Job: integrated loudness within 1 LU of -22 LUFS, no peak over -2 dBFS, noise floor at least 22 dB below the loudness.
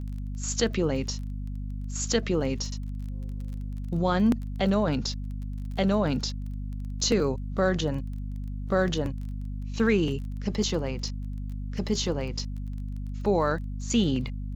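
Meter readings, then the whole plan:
tick rate 21 per s; hum 50 Hz; highest harmonic 250 Hz; hum level -31 dBFS; loudness -29.0 LUFS; peak level -11.5 dBFS; loudness target -22.0 LUFS
-> de-click; hum notches 50/100/150/200/250 Hz; trim +7 dB

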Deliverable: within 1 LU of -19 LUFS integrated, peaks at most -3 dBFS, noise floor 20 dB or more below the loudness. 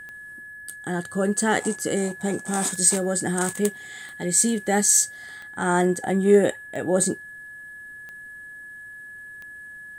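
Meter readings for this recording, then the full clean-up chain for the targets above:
clicks found 8; steady tone 1.7 kHz; tone level -38 dBFS; loudness -22.0 LUFS; peak level -4.5 dBFS; loudness target -19.0 LUFS
-> de-click; band-stop 1.7 kHz, Q 30; trim +3 dB; peak limiter -3 dBFS

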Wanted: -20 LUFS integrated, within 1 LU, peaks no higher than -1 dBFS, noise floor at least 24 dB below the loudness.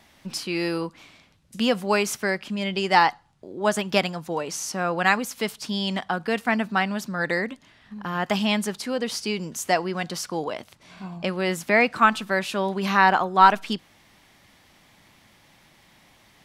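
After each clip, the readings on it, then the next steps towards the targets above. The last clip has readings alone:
loudness -24.0 LUFS; peak level -1.5 dBFS; loudness target -20.0 LUFS
-> trim +4 dB; peak limiter -1 dBFS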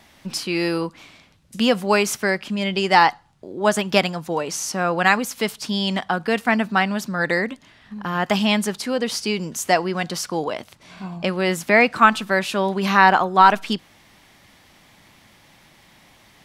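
loudness -20.0 LUFS; peak level -1.0 dBFS; noise floor -53 dBFS

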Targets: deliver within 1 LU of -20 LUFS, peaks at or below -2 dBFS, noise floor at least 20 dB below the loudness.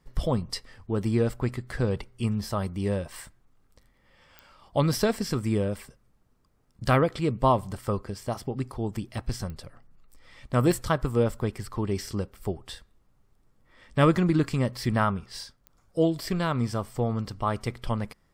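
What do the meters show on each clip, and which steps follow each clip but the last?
clicks found 4; loudness -28.0 LUFS; peak level -8.5 dBFS; loudness target -20.0 LUFS
-> de-click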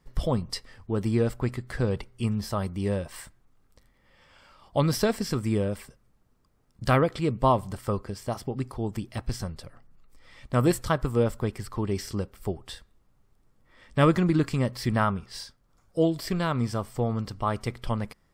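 clicks found 0; loudness -28.0 LUFS; peak level -8.5 dBFS; loudness target -20.0 LUFS
-> trim +8 dB; peak limiter -2 dBFS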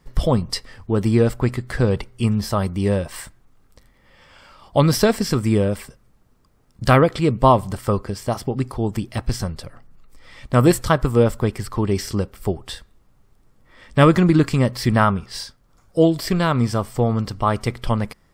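loudness -20.0 LUFS; peak level -2.0 dBFS; noise floor -58 dBFS

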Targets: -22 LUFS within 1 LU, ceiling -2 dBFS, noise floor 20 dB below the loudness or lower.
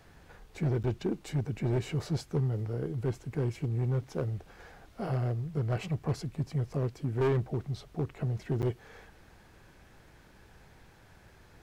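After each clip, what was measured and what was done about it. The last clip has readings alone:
clipped samples 1.9%; clipping level -23.5 dBFS; dropouts 2; longest dropout 8.8 ms; loudness -33.0 LUFS; peak level -23.5 dBFS; loudness target -22.0 LUFS
-> clip repair -23.5 dBFS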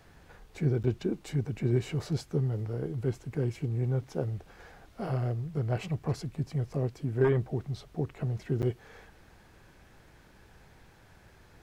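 clipped samples 0.0%; dropouts 2; longest dropout 8.8 ms
-> interpolate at 0.83/8.62 s, 8.8 ms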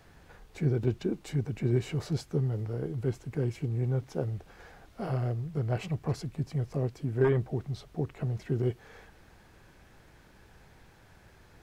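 dropouts 0; loudness -32.0 LUFS; peak level -14.5 dBFS; loudness target -22.0 LUFS
-> trim +10 dB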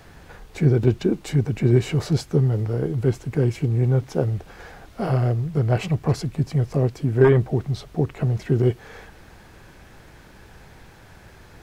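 loudness -22.0 LUFS; peak level -4.5 dBFS; noise floor -48 dBFS

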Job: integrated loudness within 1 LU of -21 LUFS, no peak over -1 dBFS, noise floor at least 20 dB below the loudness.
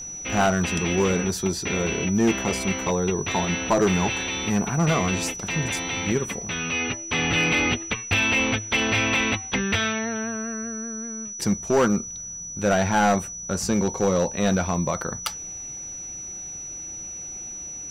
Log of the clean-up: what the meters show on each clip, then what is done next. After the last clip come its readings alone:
clipped samples 0.9%; clipping level -14.0 dBFS; steady tone 5.9 kHz; tone level -33 dBFS; loudness -24.0 LUFS; peak level -14.0 dBFS; loudness target -21.0 LUFS
-> clip repair -14 dBFS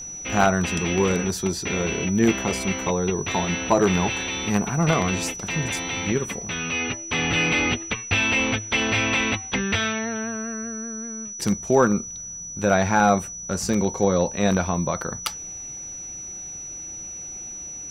clipped samples 0.0%; steady tone 5.9 kHz; tone level -33 dBFS
-> band-stop 5.9 kHz, Q 30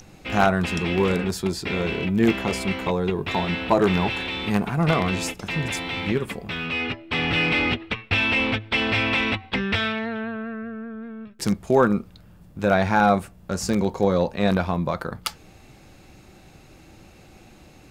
steady tone not found; loudness -23.0 LUFS; peak level -4.5 dBFS; loudness target -21.0 LUFS
-> trim +2 dB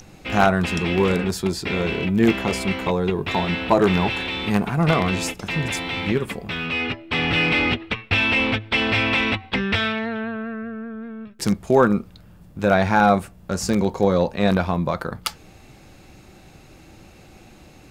loudness -21.0 LUFS; peak level -2.5 dBFS; noise floor -48 dBFS

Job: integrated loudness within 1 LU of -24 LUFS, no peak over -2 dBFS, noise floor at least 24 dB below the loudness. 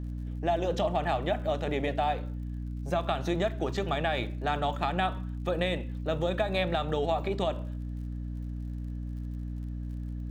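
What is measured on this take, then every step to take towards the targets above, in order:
tick rate 54 per s; hum 60 Hz; highest harmonic 300 Hz; hum level -33 dBFS; loudness -31.5 LUFS; peak level -15.0 dBFS; loudness target -24.0 LUFS
-> de-click; hum notches 60/120/180/240/300 Hz; trim +7.5 dB

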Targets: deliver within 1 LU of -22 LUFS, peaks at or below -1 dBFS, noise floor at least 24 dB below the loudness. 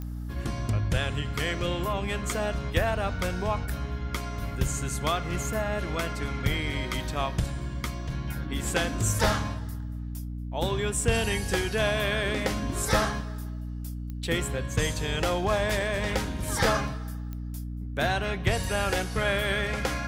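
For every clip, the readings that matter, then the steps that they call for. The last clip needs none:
clicks found 4; hum 60 Hz; highest harmonic 300 Hz; hum level -32 dBFS; loudness -29.0 LUFS; peak level -11.5 dBFS; loudness target -22.0 LUFS
-> de-click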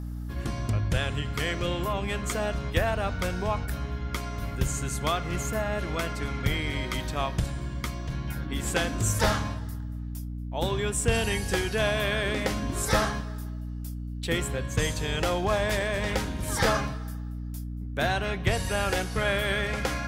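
clicks found 0; hum 60 Hz; highest harmonic 300 Hz; hum level -32 dBFS
-> de-hum 60 Hz, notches 5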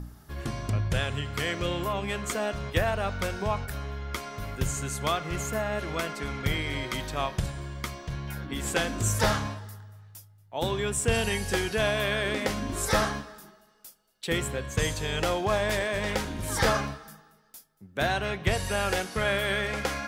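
hum not found; loudness -29.0 LUFS; peak level -12.5 dBFS; loudness target -22.0 LUFS
-> trim +7 dB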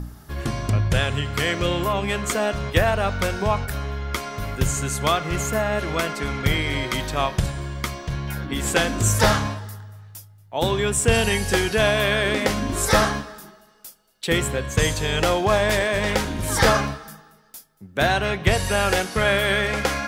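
loudness -22.0 LUFS; peak level -5.5 dBFS; noise floor -51 dBFS

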